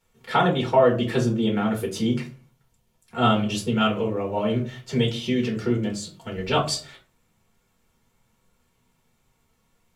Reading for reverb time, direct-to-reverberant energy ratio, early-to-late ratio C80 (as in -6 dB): 0.40 s, -3.5 dB, 16.5 dB